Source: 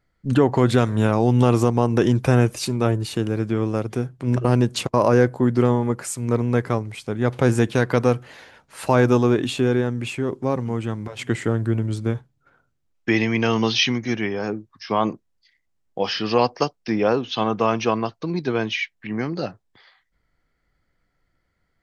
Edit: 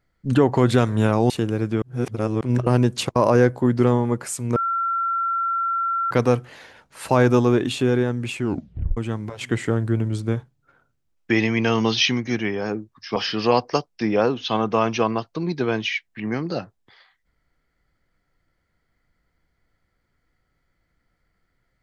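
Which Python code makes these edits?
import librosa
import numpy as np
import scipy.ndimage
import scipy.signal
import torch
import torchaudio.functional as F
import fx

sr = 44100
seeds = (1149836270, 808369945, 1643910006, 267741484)

y = fx.edit(x, sr, fx.cut(start_s=1.3, length_s=1.78),
    fx.reverse_span(start_s=3.6, length_s=0.59),
    fx.bleep(start_s=6.34, length_s=1.55, hz=1360.0, db=-20.0),
    fx.tape_stop(start_s=10.17, length_s=0.58),
    fx.cut(start_s=14.94, length_s=1.09), tone=tone)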